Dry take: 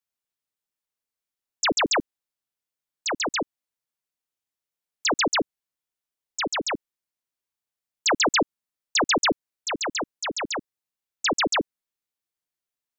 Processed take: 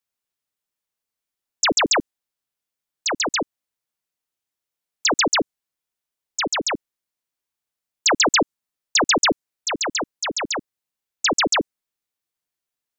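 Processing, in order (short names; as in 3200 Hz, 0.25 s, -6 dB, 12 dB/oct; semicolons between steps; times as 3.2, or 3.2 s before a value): dynamic EQ 7200 Hz, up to +4 dB, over -38 dBFS, Q 0.94; gain +3 dB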